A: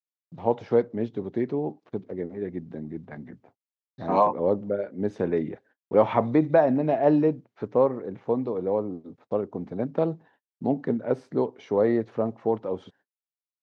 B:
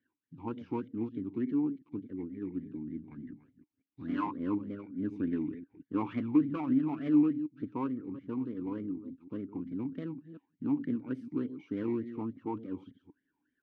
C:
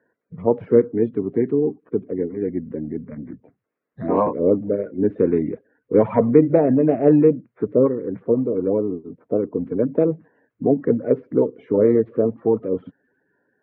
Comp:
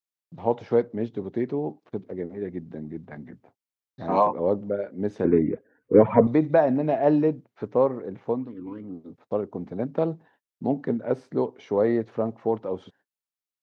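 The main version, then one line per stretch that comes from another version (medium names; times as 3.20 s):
A
5.25–6.27 s: from C
8.41–8.92 s: from B, crossfade 0.24 s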